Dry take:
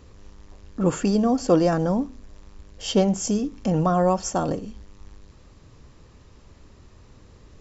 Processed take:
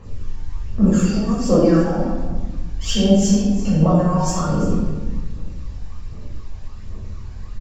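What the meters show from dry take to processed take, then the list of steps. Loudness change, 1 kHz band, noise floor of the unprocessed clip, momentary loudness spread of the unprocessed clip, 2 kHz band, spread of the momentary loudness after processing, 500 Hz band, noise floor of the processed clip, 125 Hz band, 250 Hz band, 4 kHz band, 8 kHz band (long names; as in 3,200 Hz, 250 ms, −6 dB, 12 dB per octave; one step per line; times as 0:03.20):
+4.5 dB, 0.0 dB, −52 dBFS, 13 LU, +3.5 dB, 21 LU, +2.5 dB, −32 dBFS, +8.0 dB, +6.5 dB, +6.0 dB, can't be measured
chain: downward compressor 4 to 1, threshold −24 dBFS, peak gain reduction 10.5 dB
phase shifter 1.3 Hz, delay 1.4 ms, feedback 77%
on a send: single-tap delay 342 ms −15 dB
on the sum: rectangular room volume 600 cubic metres, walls mixed, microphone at 5.8 metres
level −8 dB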